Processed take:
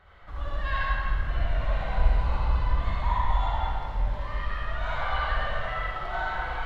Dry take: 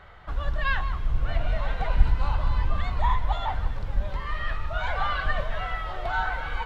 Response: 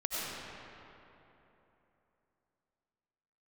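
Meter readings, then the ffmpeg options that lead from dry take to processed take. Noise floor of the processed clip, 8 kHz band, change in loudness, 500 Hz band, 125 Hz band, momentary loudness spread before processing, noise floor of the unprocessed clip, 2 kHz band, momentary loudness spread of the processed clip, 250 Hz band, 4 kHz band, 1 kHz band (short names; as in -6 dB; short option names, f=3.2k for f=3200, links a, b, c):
-36 dBFS, n/a, -0.5 dB, -0.5 dB, -0.5 dB, 6 LU, -34 dBFS, -1.5 dB, 6 LU, -1.0 dB, -1.5 dB, -0.5 dB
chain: -filter_complex "[1:a]atrim=start_sample=2205,asetrate=70560,aresample=44100[a];[0:a][a]afir=irnorm=-1:irlink=0,volume=-3.5dB"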